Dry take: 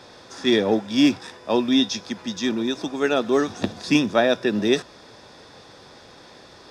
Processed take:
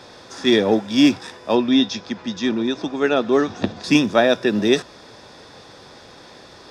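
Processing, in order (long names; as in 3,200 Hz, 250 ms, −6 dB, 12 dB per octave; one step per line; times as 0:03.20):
0:01.55–0:03.84: high-frequency loss of the air 97 metres
level +3 dB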